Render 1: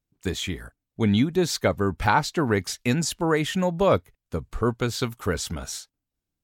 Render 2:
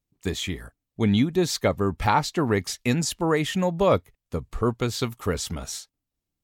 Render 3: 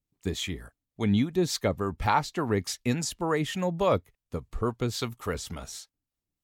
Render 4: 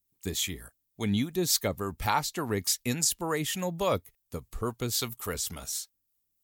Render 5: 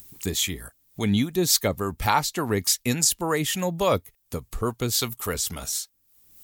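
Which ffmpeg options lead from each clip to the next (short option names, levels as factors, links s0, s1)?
-af "bandreject=f=1500:w=11"
-filter_complex "[0:a]acrossover=split=530[s0][s1];[s0]aeval=exprs='val(0)*(1-0.5/2+0.5/2*cos(2*PI*3.5*n/s))':c=same[s2];[s1]aeval=exprs='val(0)*(1-0.5/2-0.5/2*cos(2*PI*3.5*n/s))':c=same[s3];[s2][s3]amix=inputs=2:normalize=0,volume=0.794"
-af "aemphasis=mode=production:type=75fm,volume=0.708"
-af "acompressor=mode=upward:threshold=0.02:ratio=2.5,volume=1.88"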